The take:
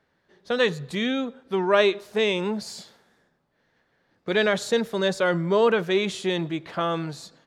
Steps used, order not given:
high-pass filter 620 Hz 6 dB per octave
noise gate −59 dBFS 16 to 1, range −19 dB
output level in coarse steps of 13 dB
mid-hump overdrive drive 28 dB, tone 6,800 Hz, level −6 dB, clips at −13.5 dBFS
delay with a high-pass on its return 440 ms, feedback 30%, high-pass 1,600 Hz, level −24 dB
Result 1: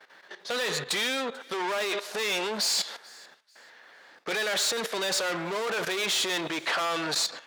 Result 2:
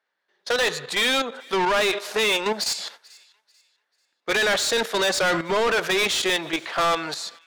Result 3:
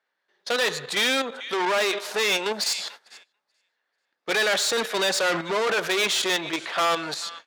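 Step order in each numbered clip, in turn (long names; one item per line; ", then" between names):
mid-hump overdrive, then output level in coarse steps, then high-pass filter, then noise gate, then delay with a high-pass on its return
output level in coarse steps, then noise gate, then high-pass filter, then mid-hump overdrive, then delay with a high-pass on its return
output level in coarse steps, then delay with a high-pass on its return, then noise gate, then mid-hump overdrive, then high-pass filter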